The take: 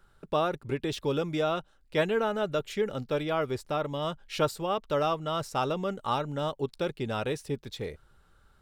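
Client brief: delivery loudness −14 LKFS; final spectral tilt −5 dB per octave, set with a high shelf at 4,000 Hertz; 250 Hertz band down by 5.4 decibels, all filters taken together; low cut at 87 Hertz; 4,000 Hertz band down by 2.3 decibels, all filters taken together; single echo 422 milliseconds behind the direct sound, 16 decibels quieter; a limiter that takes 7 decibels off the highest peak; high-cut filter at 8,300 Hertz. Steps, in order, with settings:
high-pass filter 87 Hz
low-pass filter 8,300 Hz
parametric band 250 Hz −8 dB
high-shelf EQ 4,000 Hz +5.5 dB
parametric band 4,000 Hz −6 dB
brickwall limiter −21.5 dBFS
single-tap delay 422 ms −16 dB
level +20 dB

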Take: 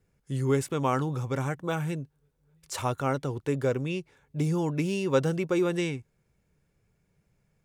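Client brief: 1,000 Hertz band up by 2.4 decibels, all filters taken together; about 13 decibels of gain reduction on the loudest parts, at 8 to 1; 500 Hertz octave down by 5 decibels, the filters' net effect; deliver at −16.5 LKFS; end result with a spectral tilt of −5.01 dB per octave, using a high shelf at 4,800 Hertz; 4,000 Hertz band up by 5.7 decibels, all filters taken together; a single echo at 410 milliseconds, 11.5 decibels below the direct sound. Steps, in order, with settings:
parametric band 500 Hz −7.5 dB
parametric band 1,000 Hz +4.5 dB
parametric band 4,000 Hz +5 dB
high-shelf EQ 4,800 Hz +5 dB
downward compressor 8 to 1, threshold −35 dBFS
single-tap delay 410 ms −11.5 dB
level +22.5 dB

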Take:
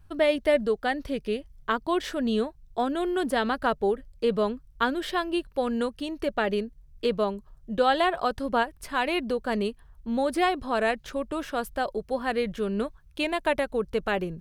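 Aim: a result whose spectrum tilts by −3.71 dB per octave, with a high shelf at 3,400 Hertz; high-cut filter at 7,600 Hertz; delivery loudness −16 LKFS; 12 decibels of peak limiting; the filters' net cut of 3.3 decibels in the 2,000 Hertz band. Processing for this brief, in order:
low-pass filter 7,600 Hz
parametric band 2,000 Hz −6 dB
high-shelf EQ 3,400 Hz +5.5 dB
level +16.5 dB
brickwall limiter −5.5 dBFS

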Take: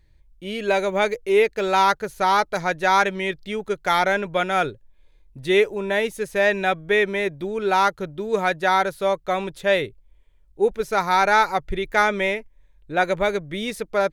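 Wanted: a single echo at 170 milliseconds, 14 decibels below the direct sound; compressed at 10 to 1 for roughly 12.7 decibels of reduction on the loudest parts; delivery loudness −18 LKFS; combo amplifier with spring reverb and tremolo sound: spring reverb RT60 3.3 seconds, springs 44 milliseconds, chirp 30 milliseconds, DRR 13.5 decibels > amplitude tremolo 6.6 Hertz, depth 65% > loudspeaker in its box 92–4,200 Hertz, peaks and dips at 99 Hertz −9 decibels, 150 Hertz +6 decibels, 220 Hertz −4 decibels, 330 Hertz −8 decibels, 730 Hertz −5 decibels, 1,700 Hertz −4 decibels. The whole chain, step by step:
downward compressor 10 to 1, threshold −26 dBFS
single-tap delay 170 ms −14 dB
spring reverb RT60 3.3 s, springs 44 ms, chirp 30 ms, DRR 13.5 dB
amplitude tremolo 6.6 Hz, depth 65%
loudspeaker in its box 92–4,200 Hz, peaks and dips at 99 Hz −9 dB, 150 Hz +6 dB, 220 Hz −4 dB, 330 Hz −8 dB, 730 Hz −5 dB, 1,700 Hz −4 dB
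level +17.5 dB

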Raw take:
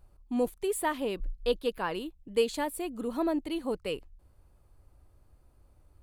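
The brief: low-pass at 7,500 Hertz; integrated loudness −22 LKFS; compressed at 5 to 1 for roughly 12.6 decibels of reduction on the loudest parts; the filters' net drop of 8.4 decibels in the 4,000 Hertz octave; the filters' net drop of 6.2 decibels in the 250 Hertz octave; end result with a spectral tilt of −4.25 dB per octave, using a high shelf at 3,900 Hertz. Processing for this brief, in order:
low-pass filter 7,500 Hz
parametric band 250 Hz −8 dB
high-shelf EQ 3,900 Hz −6.5 dB
parametric band 4,000 Hz −8.5 dB
downward compressor 5 to 1, threshold −38 dBFS
level +21 dB

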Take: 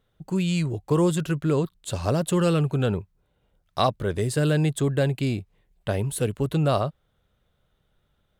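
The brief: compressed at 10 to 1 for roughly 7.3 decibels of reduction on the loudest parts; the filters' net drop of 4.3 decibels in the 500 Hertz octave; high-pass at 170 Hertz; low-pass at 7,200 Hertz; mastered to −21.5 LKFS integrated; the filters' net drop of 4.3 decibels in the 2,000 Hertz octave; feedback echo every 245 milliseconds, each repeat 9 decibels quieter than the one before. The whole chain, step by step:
high-pass filter 170 Hz
low-pass filter 7,200 Hz
parametric band 500 Hz −5 dB
parametric band 2,000 Hz −6 dB
downward compressor 10 to 1, threshold −27 dBFS
repeating echo 245 ms, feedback 35%, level −9 dB
level +12 dB

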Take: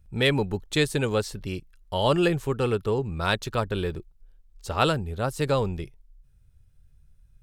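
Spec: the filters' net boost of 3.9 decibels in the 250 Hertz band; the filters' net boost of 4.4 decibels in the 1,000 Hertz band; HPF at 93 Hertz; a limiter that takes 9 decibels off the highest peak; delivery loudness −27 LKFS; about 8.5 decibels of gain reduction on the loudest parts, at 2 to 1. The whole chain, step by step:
high-pass filter 93 Hz
parametric band 250 Hz +5.5 dB
parametric band 1,000 Hz +5.5 dB
downward compressor 2 to 1, threshold −30 dBFS
level +6 dB
brickwall limiter −15 dBFS

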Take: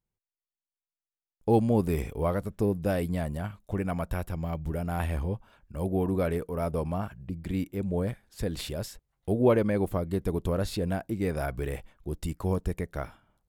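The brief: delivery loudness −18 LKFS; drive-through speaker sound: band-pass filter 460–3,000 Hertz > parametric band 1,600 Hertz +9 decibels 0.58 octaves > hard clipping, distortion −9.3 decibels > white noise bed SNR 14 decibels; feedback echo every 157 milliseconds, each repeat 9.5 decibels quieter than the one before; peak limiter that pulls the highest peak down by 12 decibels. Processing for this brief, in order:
brickwall limiter −23 dBFS
band-pass filter 460–3,000 Hz
parametric band 1,600 Hz +9 dB 0.58 octaves
repeating echo 157 ms, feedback 33%, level −9.5 dB
hard clipping −34.5 dBFS
white noise bed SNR 14 dB
level +23 dB

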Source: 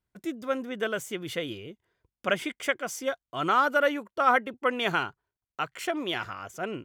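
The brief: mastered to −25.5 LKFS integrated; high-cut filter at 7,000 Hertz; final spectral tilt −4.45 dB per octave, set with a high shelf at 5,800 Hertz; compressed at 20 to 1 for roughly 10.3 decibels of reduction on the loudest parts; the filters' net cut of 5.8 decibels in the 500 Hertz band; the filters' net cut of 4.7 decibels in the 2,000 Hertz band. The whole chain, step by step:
low-pass filter 7,000 Hz
parametric band 500 Hz −6.5 dB
parametric band 2,000 Hz −5.5 dB
high-shelf EQ 5,800 Hz −8.5 dB
downward compressor 20 to 1, threshold −30 dBFS
level +12 dB

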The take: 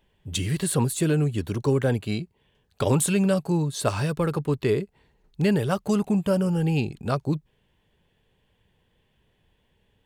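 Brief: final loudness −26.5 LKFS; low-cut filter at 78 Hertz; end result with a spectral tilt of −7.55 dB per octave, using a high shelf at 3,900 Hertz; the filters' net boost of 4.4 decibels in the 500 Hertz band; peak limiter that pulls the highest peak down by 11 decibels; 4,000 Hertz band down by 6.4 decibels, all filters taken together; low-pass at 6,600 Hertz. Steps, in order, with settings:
high-pass filter 78 Hz
low-pass filter 6,600 Hz
parametric band 500 Hz +5.5 dB
high-shelf EQ 3,900 Hz −4 dB
parametric band 4,000 Hz −5.5 dB
brickwall limiter −16.5 dBFS

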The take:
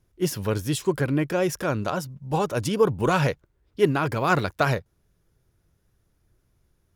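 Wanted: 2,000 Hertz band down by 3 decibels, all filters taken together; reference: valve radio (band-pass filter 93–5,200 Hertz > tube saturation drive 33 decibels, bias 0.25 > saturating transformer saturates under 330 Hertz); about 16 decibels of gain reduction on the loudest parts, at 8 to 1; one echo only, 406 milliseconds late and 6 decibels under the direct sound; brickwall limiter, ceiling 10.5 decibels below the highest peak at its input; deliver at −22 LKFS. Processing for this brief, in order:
parametric band 2,000 Hz −4.5 dB
downward compressor 8 to 1, threshold −31 dBFS
brickwall limiter −31 dBFS
band-pass filter 93–5,200 Hz
single-tap delay 406 ms −6 dB
tube saturation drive 33 dB, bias 0.25
saturating transformer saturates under 330 Hz
level +22.5 dB

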